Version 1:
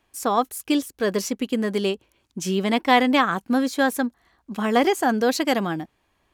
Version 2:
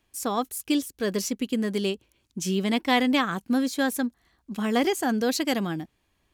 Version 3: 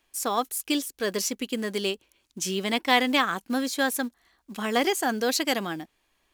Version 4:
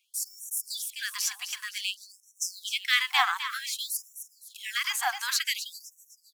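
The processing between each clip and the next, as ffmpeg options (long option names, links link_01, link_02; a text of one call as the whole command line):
ffmpeg -i in.wav -af "equalizer=frequency=900:width_type=o:width=2.6:gain=-7.5" out.wav
ffmpeg -i in.wav -af "equalizer=frequency=100:width_type=o:width=2.8:gain=-14,acrusher=bits=7:mode=log:mix=0:aa=0.000001,volume=3dB" out.wav
ffmpeg -i in.wav -af "aecho=1:1:257|514|771|1028|1285:0.316|0.136|0.0585|0.0251|0.0108,afftfilt=real='re*gte(b*sr/1024,720*pow(5600/720,0.5+0.5*sin(2*PI*0.54*pts/sr)))':imag='im*gte(b*sr/1024,720*pow(5600/720,0.5+0.5*sin(2*PI*0.54*pts/sr)))':win_size=1024:overlap=0.75" out.wav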